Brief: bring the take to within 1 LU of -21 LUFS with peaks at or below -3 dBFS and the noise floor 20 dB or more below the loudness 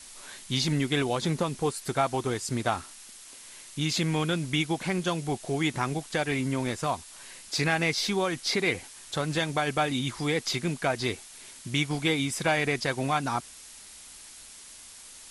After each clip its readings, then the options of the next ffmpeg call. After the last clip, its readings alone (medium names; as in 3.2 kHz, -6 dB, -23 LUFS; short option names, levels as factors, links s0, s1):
noise floor -48 dBFS; noise floor target -49 dBFS; loudness -28.5 LUFS; peak level -11.0 dBFS; loudness target -21.0 LUFS
-> -af "afftdn=nr=6:nf=-48"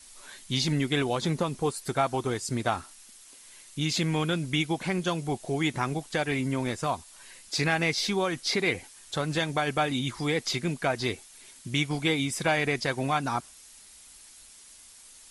noise floor -52 dBFS; loudness -28.5 LUFS; peak level -11.0 dBFS; loudness target -21.0 LUFS
-> -af "volume=2.37"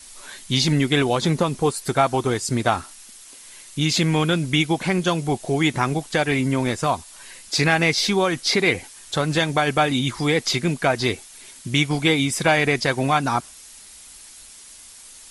loudness -21.0 LUFS; peak level -3.5 dBFS; noise floor -44 dBFS